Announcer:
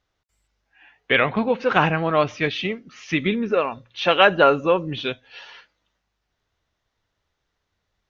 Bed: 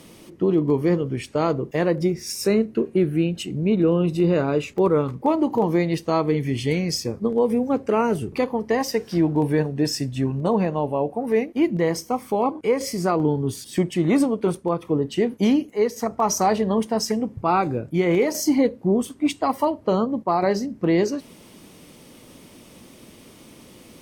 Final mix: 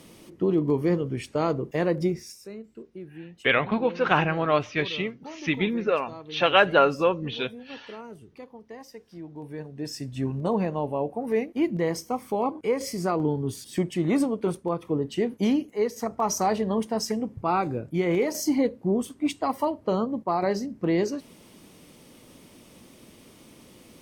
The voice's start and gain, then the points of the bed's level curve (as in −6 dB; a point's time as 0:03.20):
2.35 s, −3.5 dB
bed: 0:02.17 −3.5 dB
0:02.41 −21 dB
0:09.29 −21 dB
0:10.27 −4.5 dB